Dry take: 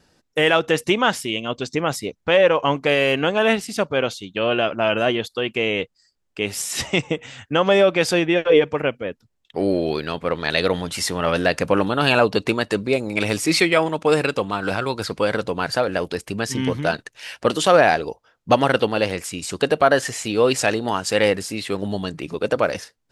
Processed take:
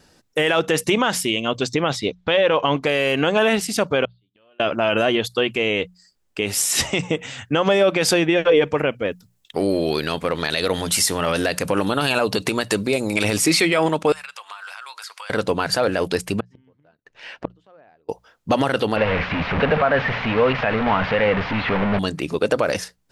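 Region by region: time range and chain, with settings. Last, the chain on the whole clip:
1.74–2.83 s: low-pass 4.6 kHz + peaking EQ 3.6 kHz +8 dB 0.47 oct
4.05–4.60 s: feedback comb 100 Hz, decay 0.27 s, mix 40% + inverted gate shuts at -29 dBFS, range -36 dB + rippled Chebyshev low-pass 4.7 kHz, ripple 3 dB
9.05–13.24 s: treble shelf 5.2 kHz +9.5 dB + compression 2:1, threshold -22 dBFS
14.12–15.30 s: high-pass 1 kHz 24 dB/octave + band-stop 4 kHz, Q 22 + compression, threshold -38 dBFS
16.40–18.09 s: tape spacing loss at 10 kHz 30 dB + inverted gate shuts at -20 dBFS, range -39 dB
18.96–21.99 s: one-bit delta coder 32 kbps, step -17 dBFS + low-pass 2.5 kHz 24 dB/octave + peaking EQ 340 Hz -13.5 dB 0.4 oct
whole clip: treble shelf 8.3 kHz +5 dB; hum notches 60/120/180 Hz; loudness maximiser +11 dB; trim -6.5 dB

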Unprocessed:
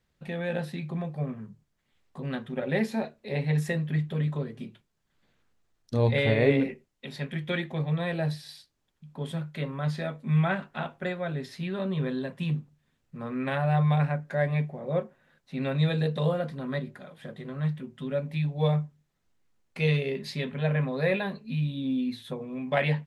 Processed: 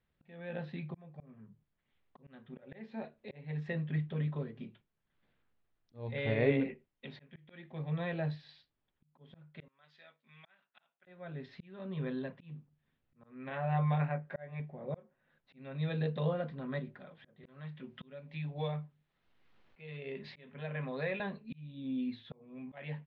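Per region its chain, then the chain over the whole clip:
9.68–11.07 s: differentiator + band-stop 4.2 kHz, Q 17
13.49–14.60 s: tone controls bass -4 dB, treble -8 dB + doubling 19 ms -6 dB
17.43–21.20 s: bass shelf 410 Hz -6 dB + three bands compressed up and down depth 70%
whole clip: low-pass 3.6 kHz 24 dB/octave; slow attack 491 ms; trim -6.5 dB

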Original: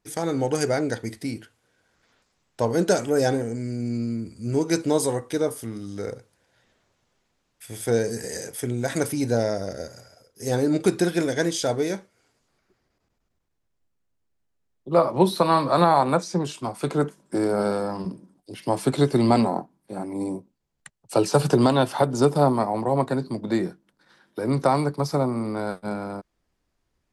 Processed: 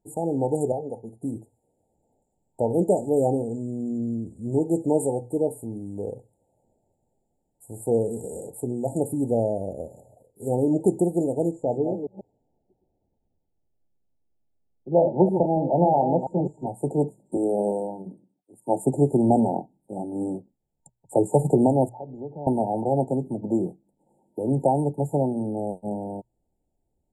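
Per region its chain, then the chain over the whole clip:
0.72–1.23 s: boxcar filter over 11 samples + tilt EQ +3 dB/octave + comb of notches 310 Hz
11.51–16.67 s: chunks repeated in reverse 140 ms, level -7 dB + boxcar filter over 15 samples
17.37–18.86 s: high-pass 190 Hz + three bands expanded up and down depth 70%
21.89–22.47 s: low-pass 1.7 kHz + compression 4:1, threshold -34 dBFS + three bands expanded up and down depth 100%
whole clip: hum notches 60/120 Hz; FFT band-reject 920–6900 Hz; treble shelf 7.5 kHz -9 dB

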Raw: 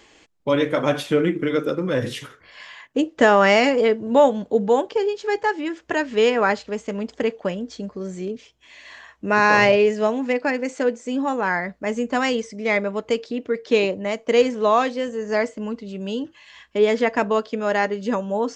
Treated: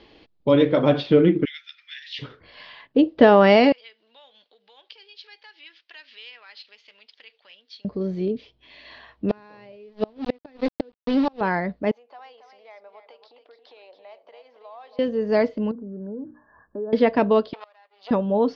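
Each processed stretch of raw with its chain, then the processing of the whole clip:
1.45–2.19 s: Chebyshev high-pass 1.8 kHz, order 5 + treble shelf 5.5 kHz +4 dB
3.72–7.85 s: compression 4:1, threshold -27 dBFS + Butterworth band-pass 3.9 kHz, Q 0.85
9.29–11.41 s: small samples zeroed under -26 dBFS + inverted gate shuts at -13 dBFS, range -32 dB
11.91–14.99 s: compression 12:1, threshold -32 dBFS + ladder high-pass 660 Hz, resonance 50% + delay 276 ms -9 dB
15.71–16.93 s: brick-wall FIR low-pass 1.8 kHz + hum notches 60/120/180/240/300 Hz + compression 2.5:1, threshold -39 dBFS
17.53–18.11 s: partial rectifier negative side -12 dB + high-pass 750 Hz 24 dB/octave + inverted gate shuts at -24 dBFS, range -27 dB
whole clip: steep low-pass 4.6 kHz 48 dB/octave; peaking EQ 1.7 kHz -10 dB 2.1 oct; trim +5 dB

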